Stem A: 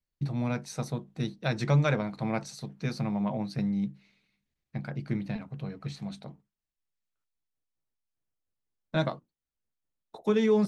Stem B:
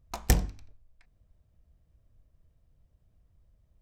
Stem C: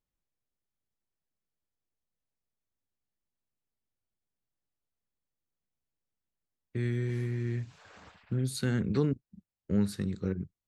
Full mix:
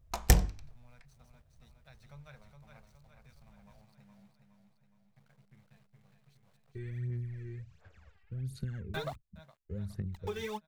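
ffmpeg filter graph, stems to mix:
ffmpeg -i stem1.wav -i stem2.wav -i stem3.wav -filter_complex "[0:a]equalizer=frequency=340:width=1.4:gain=-13,aeval=exprs='val(0)*gte(abs(val(0)),0.00944)':channel_layout=same,volume=-4dB,asplit=2[link_01][link_02];[link_02]volume=-22.5dB[link_03];[1:a]volume=1dB[link_04];[2:a]equalizer=frequency=125:width_type=o:width=1:gain=-4,equalizer=frequency=250:width_type=o:width=1:gain=7,equalizer=frequency=1000:width_type=o:width=1:gain=-7,equalizer=frequency=4000:width_type=o:width=1:gain=-6,equalizer=frequency=8000:width_type=o:width=1:gain=-6,asubboost=boost=9:cutoff=85,volume=-12dB,asplit=2[link_05][link_06];[link_06]apad=whole_len=470867[link_07];[link_01][link_07]sidechaingate=range=-52dB:threshold=-58dB:ratio=16:detection=peak[link_08];[link_08][link_05]amix=inputs=2:normalize=0,aphaser=in_gain=1:out_gain=1:delay=2.6:decay=0.73:speed=1.4:type=sinusoidal,acompressor=threshold=-33dB:ratio=6,volume=0dB[link_09];[link_03]aecho=0:1:416|832|1248|1664|2080|2496|2912|3328:1|0.53|0.281|0.149|0.0789|0.0418|0.0222|0.0117[link_10];[link_04][link_09][link_10]amix=inputs=3:normalize=0,equalizer=frequency=270:width=2.7:gain=-6" out.wav

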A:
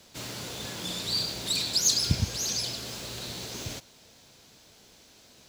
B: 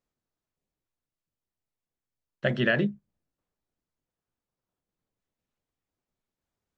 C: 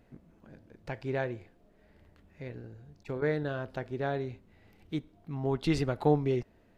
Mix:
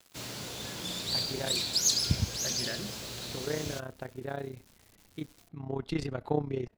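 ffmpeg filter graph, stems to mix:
ffmpeg -i stem1.wav -i stem2.wav -i stem3.wav -filter_complex "[0:a]acrusher=bits=7:mix=0:aa=0.000001,volume=-2.5dB[link_01];[1:a]volume=-16dB[link_02];[2:a]tremolo=f=31:d=0.788,adelay=250,volume=-1.5dB[link_03];[link_01][link_02][link_03]amix=inputs=3:normalize=0" out.wav

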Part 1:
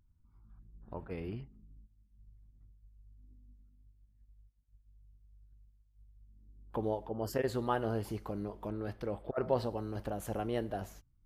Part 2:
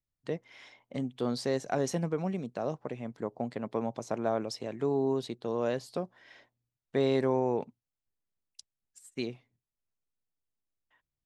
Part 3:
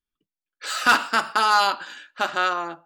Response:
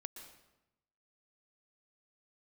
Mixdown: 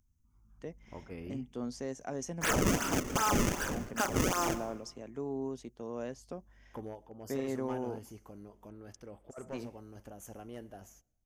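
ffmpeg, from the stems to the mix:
-filter_complex "[0:a]highshelf=frequency=3500:gain=8.5,aeval=exprs='clip(val(0),-1,0.0398)':channel_layout=same,volume=-5dB,afade=type=out:start_time=6.51:duration=0.48:silence=0.421697,asplit=2[link_01][link_02];[link_02]volume=-21dB[link_03];[1:a]adelay=350,volume=-9.5dB[link_04];[2:a]acrusher=samples=32:mix=1:aa=0.000001:lfo=1:lforange=51.2:lforate=2.6,adelay=1800,volume=1dB,asplit=2[link_05][link_06];[link_06]volume=-7dB[link_07];[3:a]atrim=start_sample=2205[link_08];[link_03][link_07]amix=inputs=2:normalize=0[link_09];[link_09][link_08]afir=irnorm=-1:irlink=0[link_10];[link_01][link_04][link_05][link_10]amix=inputs=4:normalize=0,equalizer=frequency=250:width_type=o:width=0.33:gain=5,equalizer=frequency=4000:width_type=o:width=0.33:gain=-11,equalizer=frequency=6300:width_type=o:width=0.33:gain=10,acrossover=split=1400|5300[link_11][link_12][link_13];[link_11]acompressor=threshold=-22dB:ratio=4[link_14];[link_12]acompressor=threshold=-31dB:ratio=4[link_15];[link_13]acompressor=threshold=-30dB:ratio=4[link_16];[link_14][link_15][link_16]amix=inputs=3:normalize=0,alimiter=limit=-17dB:level=0:latency=1:release=220"

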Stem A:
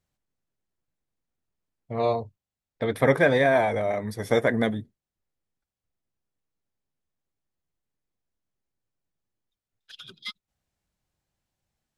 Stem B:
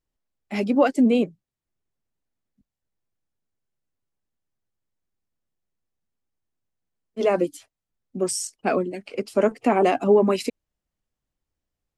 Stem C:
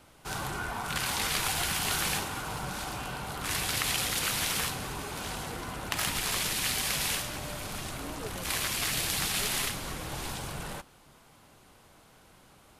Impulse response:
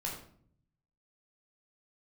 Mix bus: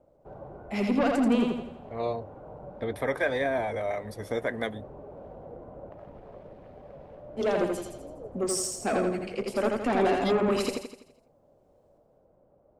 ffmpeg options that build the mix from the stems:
-filter_complex "[0:a]equalizer=frequency=160:width_type=o:width=0.52:gain=-13,alimiter=limit=-12dB:level=0:latency=1:release=273,acrossover=split=470[link_01][link_02];[link_01]aeval=exprs='val(0)*(1-0.5/2+0.5/2*cos(2*PI*1.4*n/s))':channel_layout=same[link_03];[link_02]aeval=exprs='val(0)*(1-0.5/2-0.5/2*cos(2*PI*1.4*n/s))':channel_layout=same[link_04];[link_03][link_04]amix=inputs=2:normalize=0,volume=-2.5dB[link_05];[1:a]asoftclip=type=tanh:threshold=-18.5dB,adelay=200,volume=-3dB,asplit=2[link_06][link_07];[link_07]volume=-3dB[link_08];[2:a]acompressor=threshold=-34dB:ratio=2,lowpass=frequency=570:width_type=q:width=4.9,volume=-8dB[link_09];[link_08]aecho=0:1:83|166|249|332|415|498|581:1|0.48|0.23|0.111|0.0531|0.0255|0.0122[link_10];[link_05][link_06][link_09][link_10]amix=inputs=4:normalize=0"

